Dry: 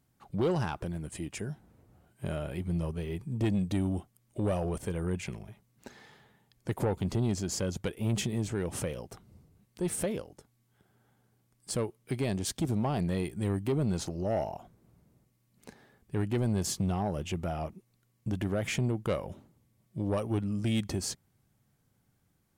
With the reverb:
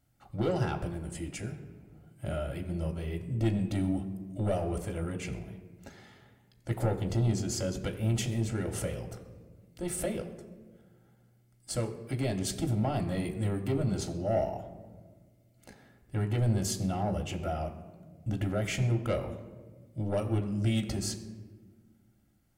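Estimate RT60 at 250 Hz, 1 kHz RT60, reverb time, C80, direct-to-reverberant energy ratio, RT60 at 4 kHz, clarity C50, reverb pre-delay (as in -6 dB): 2.2 s, 1.2 s, 1.5 s, 12.0 dB, 2.5 dB, 0.80 s, 11.0 dB, 3 ms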